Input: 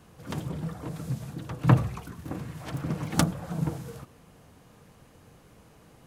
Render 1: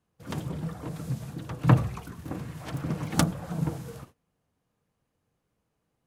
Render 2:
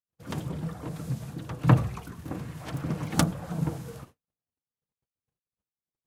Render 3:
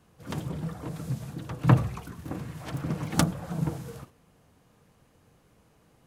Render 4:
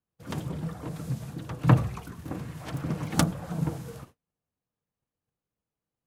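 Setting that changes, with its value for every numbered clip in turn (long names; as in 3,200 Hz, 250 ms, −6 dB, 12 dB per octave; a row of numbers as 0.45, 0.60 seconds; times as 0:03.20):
noise gate, range: −23, −59, −7, −36 decibels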